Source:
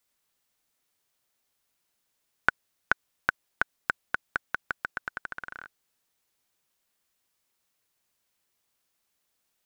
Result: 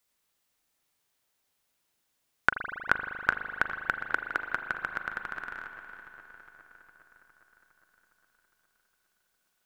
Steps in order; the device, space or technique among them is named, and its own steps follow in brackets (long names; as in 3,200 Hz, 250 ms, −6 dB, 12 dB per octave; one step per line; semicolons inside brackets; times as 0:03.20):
0:04.01–0:04.47: low shelf with overshoot 250 Hz −7 dB, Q 3
dub delay into a spring reverb (feedback echo with a low-pass in the loop 409 ms, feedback 65%, low-pass 4,900 Hz, level −13 dB; spring reverb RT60 3.3 s, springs 39 ms, chirp 20 ms, DRR 6 dB)